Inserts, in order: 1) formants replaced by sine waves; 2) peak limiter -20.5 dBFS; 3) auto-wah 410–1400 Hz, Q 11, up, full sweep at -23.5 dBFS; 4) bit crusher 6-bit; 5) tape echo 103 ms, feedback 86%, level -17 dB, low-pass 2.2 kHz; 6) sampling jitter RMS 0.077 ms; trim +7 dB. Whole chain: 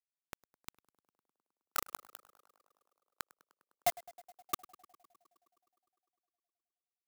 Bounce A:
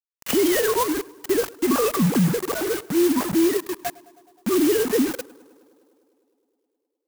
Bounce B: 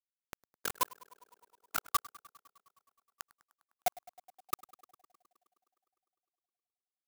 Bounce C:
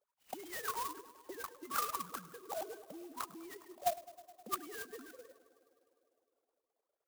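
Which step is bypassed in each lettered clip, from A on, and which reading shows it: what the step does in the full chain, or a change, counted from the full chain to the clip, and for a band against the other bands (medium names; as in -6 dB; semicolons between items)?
3, crest factor change -13.5 dB; 2, mean gain reduction 1.5 dB; 4, crest factor change -2.0 dB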